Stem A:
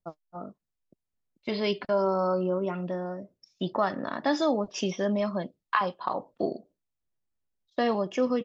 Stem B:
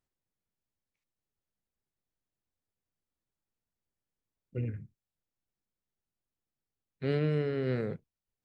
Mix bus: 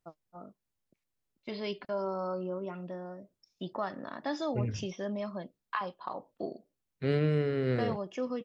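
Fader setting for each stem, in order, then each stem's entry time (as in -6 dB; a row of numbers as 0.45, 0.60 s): -8.5, +1.5 dB; 0.00, 0.00 s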